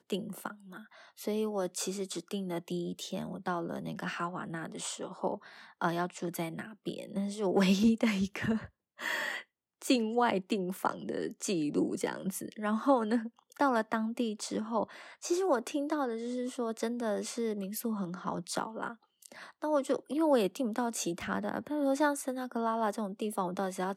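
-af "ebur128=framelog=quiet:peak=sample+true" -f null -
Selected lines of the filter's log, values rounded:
Integrated loudness:
  I:         -33.4 LUFS
  Threshold: -43.6 LUFS
Loudness range:
  LRA:         5.6 LU
  Threshold: -53.5 LUFS
  LRA low:   -37.2 LUFS
  LRA high:  -31.6 LUFS
Sample peak:
  Peak:      -13.4 dBFS
True peak:
  Peak:      -13.4 dBFS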